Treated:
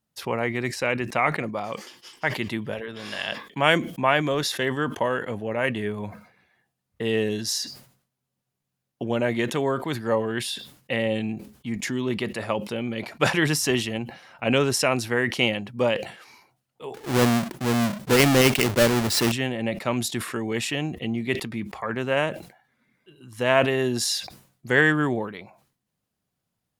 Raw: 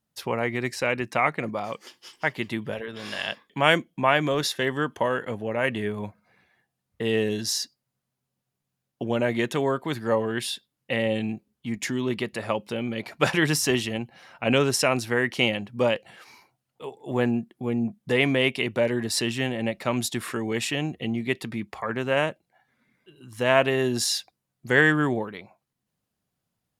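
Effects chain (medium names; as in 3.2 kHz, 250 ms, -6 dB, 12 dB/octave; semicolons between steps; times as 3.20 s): 16.94–19.32 s: square wave that keeps the level; decay stretcher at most 110 dB/s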